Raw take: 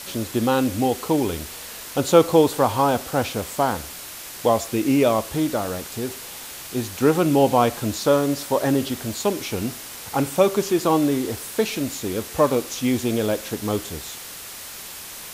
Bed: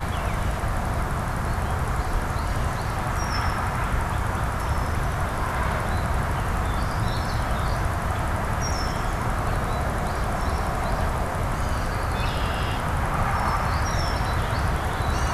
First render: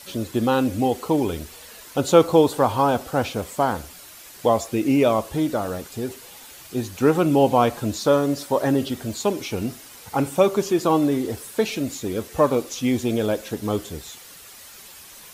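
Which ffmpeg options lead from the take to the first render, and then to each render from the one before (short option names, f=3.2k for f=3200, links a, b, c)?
-af "afftdn=nr=9:nf=-37"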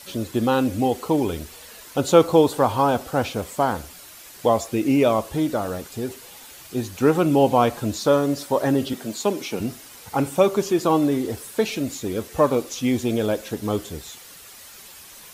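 -filter_complex "[0:a]asettb=1/sr,asplit=3[a][b][c];[a]atrim=end=8.934[d];[b]atrim=start=8.93:end=9.6,asetpts=PTS-STARTPTS,afade=t=in:d=0.004:c=qsin,afade=t=out:st=0.666:d=0.004:c=qsin,highpass=f=150:w=0.5412,highpass=f=150:w=1.3066[e];[c]atrim=start=9.596[f];[d][e]acrossfade=d=0.004:c1=hsin:c2=qsin[g];[g][f]acrossfade=d=0.004:c1=qsin:c2=hsin"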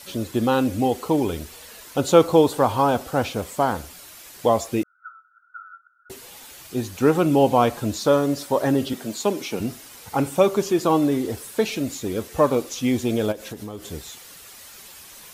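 -filter_complex "[0:a]asettb=1/sr,asplit=3[a][b][c];[a]atrim=end=4.834[d];[b]atrim=start=4.83:end=6.1,asetpts=PTS-STARTPTS,afade=t=in:d=0.004:c=qsin,afade=t=out:st=1.266:d=0.004:c=qsin,asuperpass=centerf=1400:order=8:qfactor=7.1[e];[c]atrim=start=6.096[f];[d][e]acrossfade=d=0.004:c1=hsin:c2=qsin[g];[g][f]acrossfade=d=0.004:c1=qsin:c2=hsin,asplit=3[h][i][j];[h]afade=t=out:st=13.31:d=0.02[k];[i]acompressor=threshold=-30dB:ratio=6:attack=3.2:release=140:knee=1:detection=peak,afade=t=in:st=13.31:d=0.02,afade=t=out:st=13.9:d=0.02[l];[j]afade=t=in:st=13.9:d=0.02[m];[k][l][m]amix=inputs=3:normalize=0"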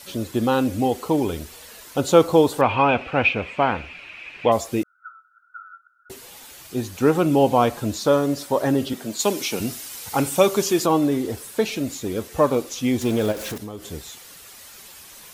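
-filter_complex "[0:a]asettb=1/sr,asplit=3[a][b][c];[a]atrim=end=2.614[d];[b]atrim=start=2.61:end=4.52,asetpts=PTS-STARTPTS,afade=t=in:d=0.004:c=qsin,afade=t=out:st=1.906:d=0.004:c=qsin,lowpass=f=2.5k:t=q:w=9.8[e];[c]atrim=start=4.516[f];[d][e]acrossfade=d=0.004:c1=hsin:c2=qsin[g];[g][f]acrossfade=d=0.004:c1=qsin:c2=hsin,asettb=1/sr,asplit=3[h][i][j];[h]atrim=end=9.194[k];[i]atrim=start=9.19:end=10.86,asetpts=PTS-STARTPTS,afade=t=in:d=0.004:c=qsin,afade=t=out:st=1.666:d=0.004:c=qsin,highshelf=f=2.3k:g=9[l];[j]atrim=start=10.856[m];[k][l]acrossfade=d=0.004:c1=hsin:c2=qsin[n];[n][m]acrossfade=d=0.004:c1=qsin:c2=hsin,asettb=1/sr,asplit=3[o][p][q];[o]atrim=end=13.014[r];[p]atrim=start=13.01:end=13.58,asetpts=PTS-STARTPTS,afade=t=in:d=0.004:c=qsin,afade=t=out:st=0.566:d=0.004:c=qsin,aeval=exprs='val(0)+0.5*0.0316*sgn(val(0))':c=same[s];[q]atrim=start=13.576[t];[r][s]acrossfade=d=0.004:c1=hsin:c2=qsin[u];[u][t]acrossfade=d=0.004:c1=qsin:c2=hsin"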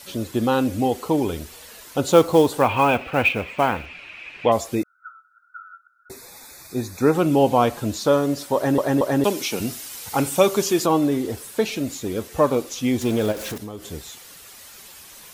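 -filter_complex "[0:a]asettb=1/sr,asplit=3[a][b][c];[a]atrim=end=2.064[d];[b]atrim=start=2.06:end=3.86,asetpts=PTS-STARTPTS,afade=t=in:d=0.004:c=qsin,afade=t=out:st=1.796:d=0.004:c=qsin,acrusher=bits=6:mode=log:mix=0:aa=0.000001[e];[c]atrim=start=3.856[f];[d][e]acrossfade=d=0.004:c1=hsin:c2=qsin[g];[g][f]acrossfade=d=0.004:c1=qsin:c2=hsin,asettb=1/sr,asplit=3[h][i][j];[h]atrim=end=4.754[k];[i]atrim=start=4.75:end=7.14,asetpts=PTS-STARTPTS,afade=t=in:d=0.004:c=qsin,afade=t=out:st=2.386:d=0.004:c=qsin,asuperstop=centerf=3000:order=12:qfactor=3.4[l];[j]atrim=start=7.136[m];[k][l]acrossfade=d=0.004:c1=hsin:c2=qsin[n];[n][m]acrossfade=d=0.004:c1=qsin:c2=hsin,asplit=4[o][p][q][r];[o]atrim=end=8.782[s];[p]atrim=start=8.548:end=8.782[t];[q]atrim=start=8.548:end=8.782[u];[r]atrim=start=9.238[v];[s][t]acrossfade=d=0.004:c1=hsin:c2=hsin[w];[w][u]acrossfade=d=0.004:c1=hsin:c2=hsin[x];[x][v]acrossfade=d=0.004:c1=hsin:c2=hsin"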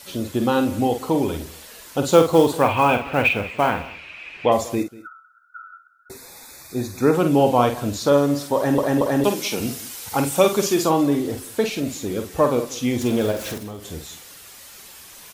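-filter_complex "[0:a]asplit=2[a][b];[b]adelay=49,volume=-7.5dB[c];[a][c]amix=inputs=2:normalize=0,aecho=1:1:190:0.106"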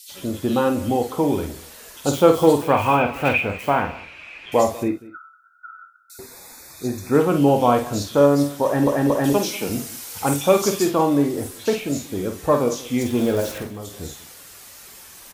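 -filter_complex "[0:a]asplit=2[a][b];[b]adelay=21,volume=-11dB[c];[a][c]amix=inputs=2:normalize=0,acrossover=split=3100[d][e];[d]adelay=90[f];[f][e]amix=inputs=2:normalize=0"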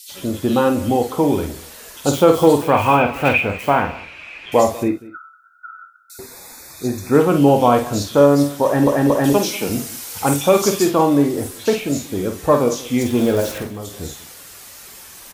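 -af "volume=3.5dB,alimiter=limit=-1dB:level=0:latency=1"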